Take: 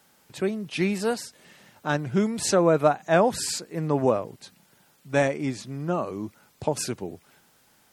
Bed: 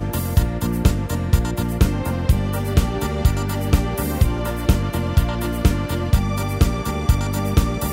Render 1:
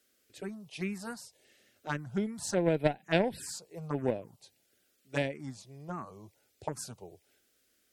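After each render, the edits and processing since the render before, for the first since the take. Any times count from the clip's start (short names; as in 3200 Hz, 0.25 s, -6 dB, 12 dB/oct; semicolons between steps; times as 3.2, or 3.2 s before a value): added harmonics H 3 -13 dB, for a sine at -5.5 dBFS; envelope phaser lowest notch 150 Hz, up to 1200 Hz, full sweep at -25.5 dBFS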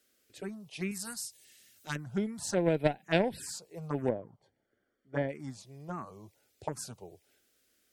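0.91–1.96 EQ curve 130 Hz 0 dB, 550 Hz -10 dB, 9200 Hz +12 dB; 4.09–5.29 polynomial smoothing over 41 samples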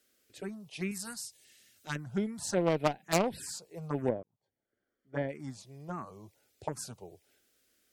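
1.01–1.97 high shelf 9400 Hz -6 dB; 2.61–3.27 self-modulated delay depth 0.51 ms; 4.23–5.43 fade in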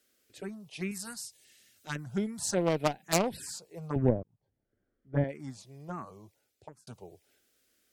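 1.98–3.37 tone controls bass +1 dB, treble +5 dB; 3.96–5.24 RIAA curve playback; 6.1–6.87 fade out linear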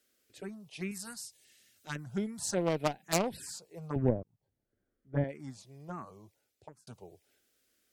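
gain -2.5 dB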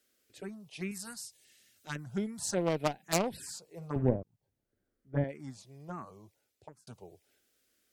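3.62–4.16 flutter echo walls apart 9.3 m, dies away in 0.23 s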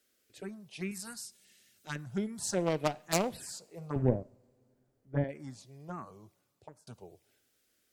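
two-slope reverb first 0.55 s, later 3.5 s, from -22 dB, DRR 19.5 dB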